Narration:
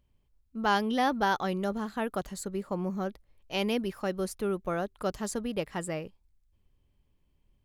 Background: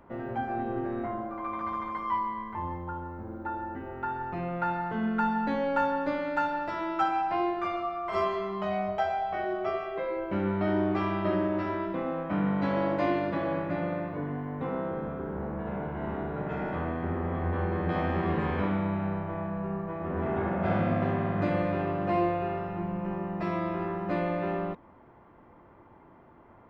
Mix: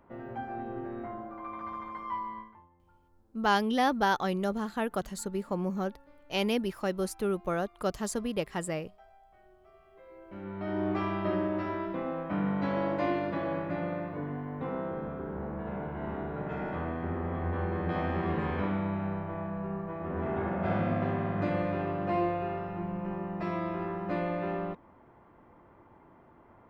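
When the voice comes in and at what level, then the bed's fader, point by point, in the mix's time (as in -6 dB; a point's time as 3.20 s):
2.80 s, +0.5 dB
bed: 2.39 s -6 dB
2.69 s -29.5 dB
9.68 s -29.5 dB
10.89 s -2.5 dB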